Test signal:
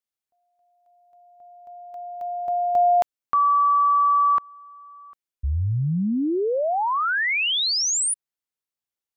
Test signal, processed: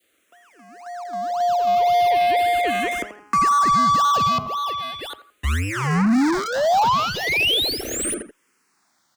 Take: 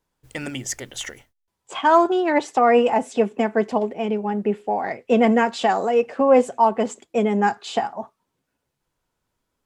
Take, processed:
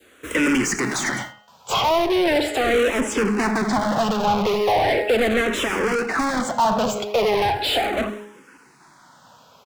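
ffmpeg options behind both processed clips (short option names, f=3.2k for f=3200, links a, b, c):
-filter_complex "[0:a]highpass=53,bandreject=f=208.4:t=h:w=4,bandreject=f=416.8:t=h:w=4,bandreject=f=625.2:t=h:w=4,bandreject=f=833.6:t=h:w=4,bandreject=f=1.042k:t=h:w=4,bandreject=f=1.2504k:t=h:w=4,bandreject=f=1.4588k:t=h:w=4,bandreject=f=1.6672k:t=h:w=4,bandreject=f=1.8756k:t=h:w=4,bandreject=f=2.084k:t=h:w=4,bandreject=f=2.2924k:t=h:w=4,bandreject=f=2.5008k:t=h:w=4,bandreject=f=2.7092k:t=h:w=4,bandreject=f=2.9176k:t=h:w=4,bandreject=f=3.126k:t=h:w=4,asplit=2[a][b];[b]acrusher=samples=33:mix=1:aa=0.000001:lfo=1:lforange=33:lforate=1.9,volume=-8dB[c];[a][c]amix=inputs=2:normalize=0,acrossover=split=98|450[d][e][f];[d]acompressor=threshold=-35dB:ratio=4[g];[e]acompressor=threshold=-33dB:ratio=4[h];[f]acompressor=threshold=-35dB:ratio=4[i];[g][h][i]amix=inputs=3:normalize=0,adynamicequalizer=threshold=0.0112:dfrequency=1100:dqfactor=0.91:tfrequency=1100:tqfactor=0.91:attack=5:release=100:ratio=0.375:range=2:mode=cutabove:tftype=bell,asplit=2[j][k];[k]adelay=84,lowpass=f=3k:p=1,volume=-19.5dB,asplit=2[l][m];[m]adelay=84,lowpass=f=3k:p=1,volume=0.27[n];[l][n]amix=inputs=2:normalize=0[o];[j][o]amix=inputs=2:normalize=0,asplit=2[p][q];[q]highpass=f=720:p=1,volume=36dB,asoftclip=type=tanh:threshold=-14dB[r];[p][r]amix=inputs=2:normalize=0,lowpass=f=3.1k:p=1,volume=-6dB,asplit=2[s][t];[t]afreqshift=-0.38[u];[s][u]amix=inputs=2:normalize=1,volume=4.5dB"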